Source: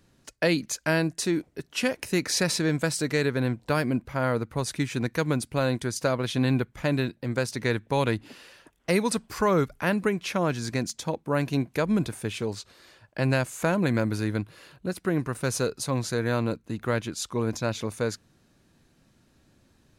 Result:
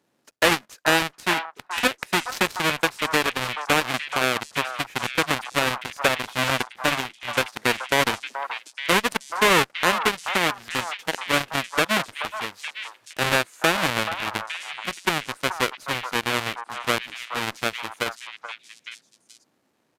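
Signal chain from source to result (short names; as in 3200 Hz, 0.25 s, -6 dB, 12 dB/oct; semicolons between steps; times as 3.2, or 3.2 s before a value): half-waves squared off; HPF 290 Hz 12 dB/oct; in parallel at +3 dB: compressor, threshold -37 dBFS, peak gain reduction 20.5 dB; on the sum: dynamic EQ 1700 Hz, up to +7 dB, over -38 dBFS, Q 0.95; added harmonics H 3 -19 dB, 5 -30 dB, 7 -17 dB, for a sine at -1.5 dBFS; on a send: delay with a stepping band-pass 0.429 s, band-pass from 1000 Hz, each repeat 1.4 oct, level -4.5 dB; on the sum: downsampling 32000 Hz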